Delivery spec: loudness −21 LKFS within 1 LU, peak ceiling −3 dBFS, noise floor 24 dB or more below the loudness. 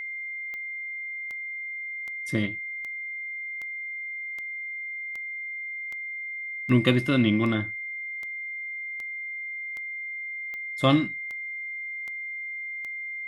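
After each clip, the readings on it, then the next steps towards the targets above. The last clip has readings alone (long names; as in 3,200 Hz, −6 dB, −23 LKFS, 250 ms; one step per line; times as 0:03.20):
number of clicks 17; interfering tone 2,100 Hz; level of the tone −32 dBFS; integrated loudness −29.5 LKFS; sample peak −5.5 dBFS; target loudness −21.0 LKFS
→ click removal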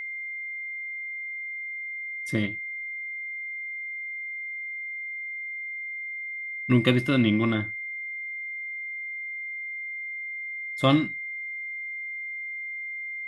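number of clicks 0; interfering tone 2,100 Hz; level of the tone −32 dBFS
→ notch filter 2,100 Hz, Q 30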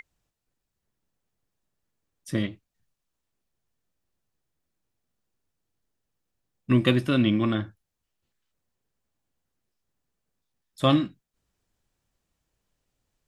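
interfering tone none found; integrated loudness −25.0 LKFS; sample peak −5.5 dBFS; target loudness −21.0 LKFS
→ level +4 dB
brickwall limiter −3 dBFS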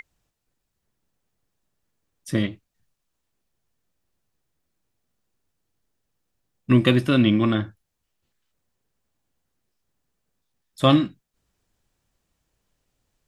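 integrated loudness −21.0 LKFS; sample peak −3.0 dBFS; background noise floor −79 dBFS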